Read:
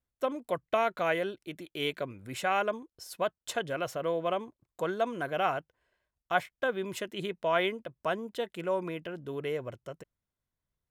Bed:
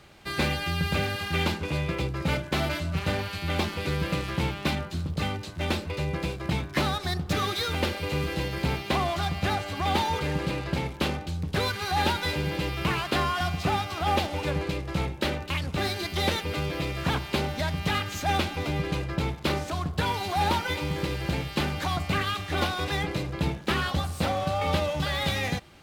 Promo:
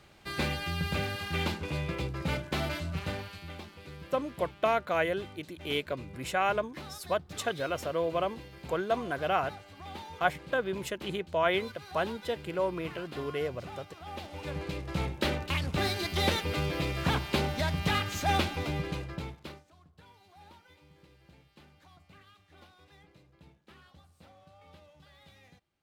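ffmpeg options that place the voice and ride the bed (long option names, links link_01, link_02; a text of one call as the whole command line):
ffmpeg -i stem1.wav -i stem2.wav -filter_complex "[0:a]adelay=3900,volume=0.5dB[link_01];[1:a]volume=11.5dB,afade=type=out:start_time=2.84:duration=0.76:silence=0.223872,afade=type=in:start_time=14.12:duration=1.2:silence=0.149624,afade=type=out:start_time=18.38:duration=1.25:silence=0.0375837[link_02];[link_01][link_02]amix=inputs=2:normalize=0" out.wav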